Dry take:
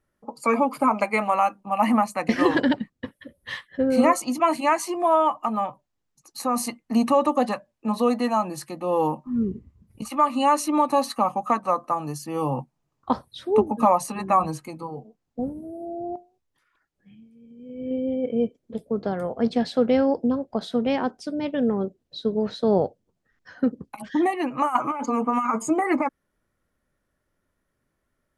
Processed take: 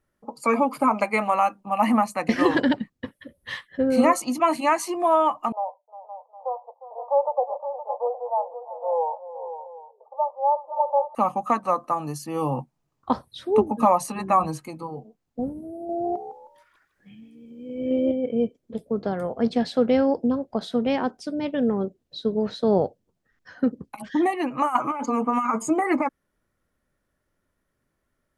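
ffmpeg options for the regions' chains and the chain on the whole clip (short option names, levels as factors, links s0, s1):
-filter_complex "[0:a]asettb=1/sr,asplit=3[s0][s1][s2];[s0]atrim=end=5.524[s3];[s1]atrim=start=5.52:end=11.15,asetpts=PTS-STARTPTS,afade=t=in:d=0.004:c=qsin,afade=t=out:st=5.626:d=0.004:c=qsin,asuperpass=centerf=690:order=12:qfactor=1.4,aecho=1:1:356|517|761:0.188|0.282|0.126,atrim=end_sample=248283[s4];[s2]atrim=start=11.146[s5];[s3][s4]acrossfade=d=0.004:c1=hsin:c2=qsin[s6];[s6][s5]acrossfade=d=0.004:c1=qsin:c2=hsin,asettb=1/sr,asplit=3[s7][s8][s9];[s7]atrim=end=15.894[s10];[s8]atrim=start=15.89:end=18.12,asetpts=PTS-STARTPTS,afade=t=in:d=0.004:c=qsin,afade=t=out:st=2.226:d=0.004:c=qsin,lowshelf=f=360:g=-5.5,acontrast=85,asplit=4[s11][s12][s13][s14];[s12]adelay=156,afreqshift=78,volume=0.266[s15];[s13]adelay=312,afreqshift=156,volume=0.0851[s16];[s14]adelay=468,afreqshift=234,volume=0.0272[s17];[s11][s15][s16][s17]amix=inputs=4:normalize=0,atrim=end_sample=98343[s18];[s9]atrim=start=18.116[s19];[s10][s18]acrossfade=d=0.004:c1=hsin:c2=qsin[s20];[s20][s19]acrossfade=d=0.004:c1=qsin:c2=hsin"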